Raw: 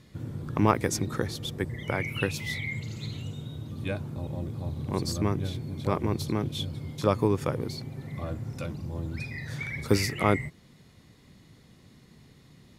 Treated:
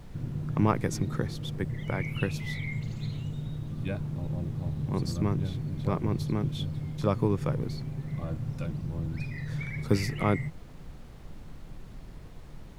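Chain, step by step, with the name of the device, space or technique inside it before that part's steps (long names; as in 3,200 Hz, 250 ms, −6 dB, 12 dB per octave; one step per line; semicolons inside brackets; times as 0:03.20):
car interior (parametric band 150 Hz +9 dB 0.83 octaves; high-shelf EQ 4,700 Hz −5.5 dB; brown noise bed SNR 12 dB)
level −4 dB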